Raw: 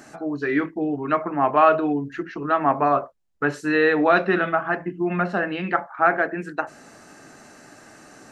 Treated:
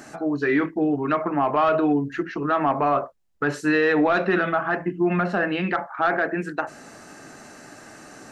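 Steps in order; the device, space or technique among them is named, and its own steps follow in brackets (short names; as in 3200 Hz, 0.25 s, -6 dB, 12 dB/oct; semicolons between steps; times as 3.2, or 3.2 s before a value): soft clipper into limiter (soft clip -8.5 dBFS, distortion -20 dB; limiter -15.5 dBFS, peak gain reduction 6.5 dB); gain +3 dB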